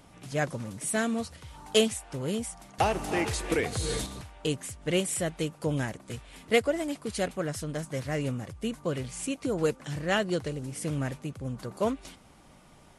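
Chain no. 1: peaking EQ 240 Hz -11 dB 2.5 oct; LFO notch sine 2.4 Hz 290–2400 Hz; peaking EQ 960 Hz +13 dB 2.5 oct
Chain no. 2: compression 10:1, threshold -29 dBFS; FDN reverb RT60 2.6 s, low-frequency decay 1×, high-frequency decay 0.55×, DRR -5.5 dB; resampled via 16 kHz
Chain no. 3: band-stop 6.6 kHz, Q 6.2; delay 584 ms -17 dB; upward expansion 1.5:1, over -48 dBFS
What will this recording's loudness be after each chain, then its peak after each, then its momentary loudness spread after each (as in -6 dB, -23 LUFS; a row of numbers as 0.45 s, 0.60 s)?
-29.0 LUFS, -28.0 LUFS, -34.0 LUFS; -6.0 dBFS, -13.5 dBFS, -12.0 dBFS; 15 LU, 5 LU, 15 LU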